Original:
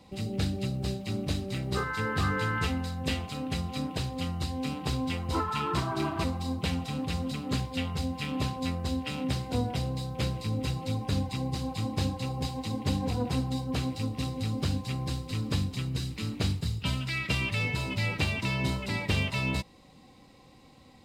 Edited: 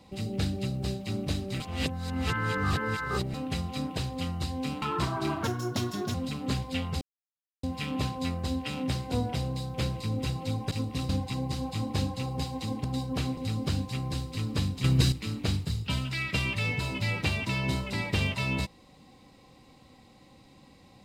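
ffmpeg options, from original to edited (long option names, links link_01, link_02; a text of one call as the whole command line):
ffmpeg -i in.wav -filter_complex "[0:a]asplit=13[link_01][link_02][link_03][link_04][link_05][link_06][link_07][link_08][link_09][link_10][link_11][link_12][link_13];[link_01]atrim=end=1.602[link_14];[link_02]atrim=start=1.598:end=3.342,asetpts=PTS-STARTPTS,areverse[link_15];[link_03]atrim=start=3.338:end=4.822[link_16];[link_04]atrim=start=5.568:end=6.184[link_17];[link_05]atrim=start=6.18:end=7.17,asetpts=PTS-STARTPTS,asetrate=61299,aresample=44100,atrim=end_sample=31409,asetpts=PTS-STARTPTS[link_18];[link_06]atrim=start=7.166:end=8.04,asetpts=PTS-STARTPTS,afade=type=out:start_time=0.87:duration=0.004:curve=hsin,apad=pad_dur=0.62[link_19];[link_07]atrim=start=8.04:end=11.122,asetpts=PTS-STARTPTS,afade=type=in:duration=0.004:curve=hsin[link_20];[link_08]atrim=start=13.948:end=14.332[link_21];[link_09]atrim=start=11.118:end=12.872[link_22];[link_10]atrim=start=13.418:end=13.952[link_23];[link_11]atrim=start=14.328:end=15.802[link_24];[link_12]atrim=start=15.798:end=16.082,asetpts=PTS-STARTPTS,volume=9.5dB[link_25];[link_13]atrim=start=16.078[link_26];[link_14][link_15]acrossfade=duration=0.004:curve1=hsin:curve2=hsin[link_27];[link_27][link_16]acrossfade=duration=0.004:curve1=hsin:curve2=hsin[link_28];[link_28][link_17]acrossfade=duration=0.004:curve1=hsin:curve2=hsin[link_29];[link_29][link_18]acrossfade=duration=0.004:curve1=hsin:curve2=hsin[link_30];[link_19][link_20]concat=n=2:v=0:a=1[link_31];[link_30][link_31]acrossfade=duration=0.004:curve1=hsin:curve2=hsin[link_32];[link_32][link_21]acrossfade=duration=0.004:curve1=hsin:curve2=hsin[link_33];[link_33][link_22]acrossfade=duration=0.004:curve1=hsin:curve2=hsin[link_34];[link_34][link_23]acrossfade=duration=0.004:curve1=hsin:curve2=hsin[link_35];[link_35][link_24]acrossfade=duration=0.004:curve1=hsin:curve2=hsin[link_36];[link_36][link_25]acrossfade=duration=0.004:curve1=hsin:curve2=hsin[link_37];[link_37][link_26]acrossfade=duration=0.004:curve1=hsin:curve2=hsin" out.wav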